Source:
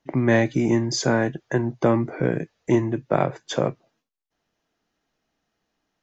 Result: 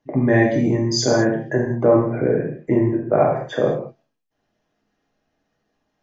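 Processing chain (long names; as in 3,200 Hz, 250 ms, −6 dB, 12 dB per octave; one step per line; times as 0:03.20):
spectral envelope exaggerated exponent 1.5
0:01.54–0:03.56: high shelf with overshoot 3,000 Hz −11 dB, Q 1.5
reverb whose tail is shaped and stops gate 240 ms falling, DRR −3 dB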